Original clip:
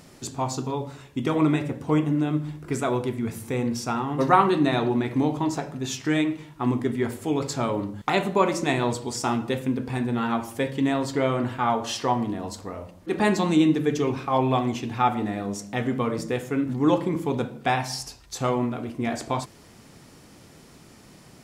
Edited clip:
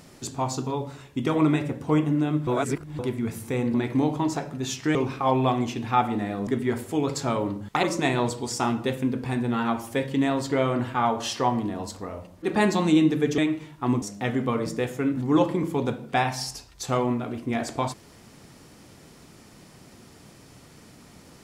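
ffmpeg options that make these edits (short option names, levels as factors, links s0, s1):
-filter_complex "[0:a]asplit=9[s0][s1][s2][s3][s4][s5][s6][s7][s8];[s0]atrim=end=2.472[s9];[s1]atrim=start=2.468:end=2.992,asetpts=PTS-STARTPTS,areverse[s10];[s2]atrim=start=2.988:end=3.742[s11];[s3]atrim=start=4.948:end=6.162[s12];[s4]atrim=start=14.018:end=15.542[s13];[s5]atrim=start=6.798:end=8.162[s14];[s6]atrim=start=8.468:end=14.022[s15];[s7]atrim=start=6.158:end=6.802[s16];[s8]atrim=start=15.538[s17];[s9][s10]acrossfade=d=0.004:c1=hsin:c2=hsin[s18];[s18][s11]acrossfade=d=0.004:c1=hsin:c2=hsin[s19];[s19][s12]acrossfade=d=0.004:c1=hsin:c2=hsin[s20];[s20][s13]acrossfade=d=0.004:c1=hsin:c2=hsin[s21];[s21][s14]acrossfade=d=0.004:c1=hsin:c2=hsin[s22];[s22][s15]acrossfade=d=0.004:c1=hsin:c2=hsin[s23];[s23][s16]acrossfade=d=0.004:c1=hsin:c2=hsin[s24];[s24][s17]acrossfade=d=0.004:c1=hsin:c2=hsin"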